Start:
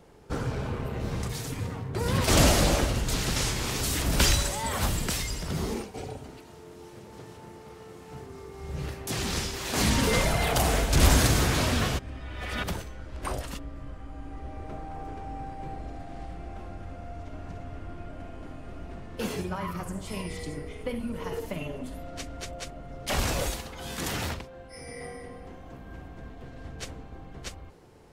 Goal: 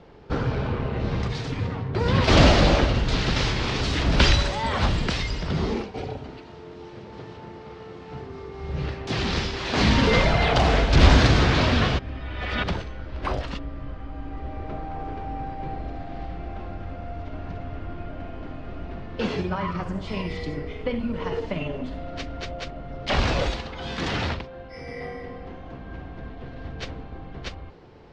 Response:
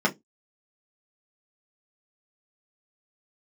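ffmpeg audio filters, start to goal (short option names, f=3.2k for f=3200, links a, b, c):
-af "lowpass=f=4.6k:w=0.5412,lowpass=f=4.6k:w=1.3066,volume=5.5dB"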